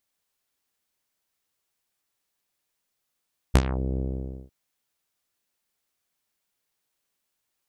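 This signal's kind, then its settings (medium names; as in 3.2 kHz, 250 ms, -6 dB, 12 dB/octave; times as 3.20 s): synth note saw C2 24 dB/octave, low-pass 500 Hz, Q 1.1, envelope 5 oct, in 0.25 s, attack 11 ms, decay 0.06 s, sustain -14 dB, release 0.52 s, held 0.44 s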